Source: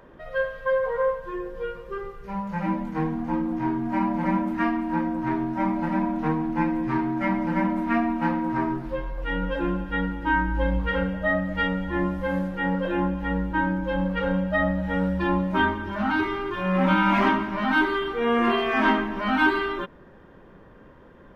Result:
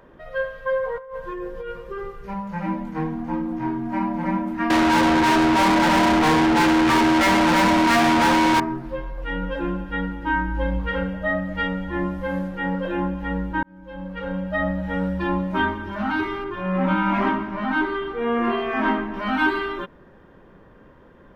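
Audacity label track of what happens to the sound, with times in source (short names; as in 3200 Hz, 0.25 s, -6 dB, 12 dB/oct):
0.980000	2.340000	negative-ratio compressor -32 dBFS
4.700000	8.600000	overdrive pedal drive 39 dB, tone 4300 Hz, clips at -11 dBFS
13.630000	14.680000	fade in
16.440000	19.140000	high shelf 3100 Hz -10 dB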